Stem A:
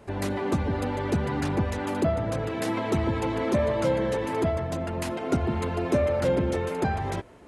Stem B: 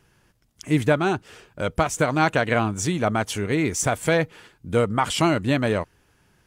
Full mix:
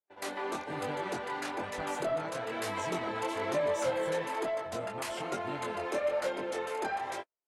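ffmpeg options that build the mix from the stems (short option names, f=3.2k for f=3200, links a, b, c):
-filter_complex "[0:a]highpass=560,asoftclip=type=tanh:threshold=-19.5dB,volume=1dB[a];[1:a]acompressor=threshold=-22dB:ratio=2.5,volume=-15.5dB[b];[a][b]amix=inputs=2:normalize=0,agate=range=-44dB:threshold=-35dB:ratio=16:detection=peak,flanger=delay=20:depth=5.2:speed=1.1"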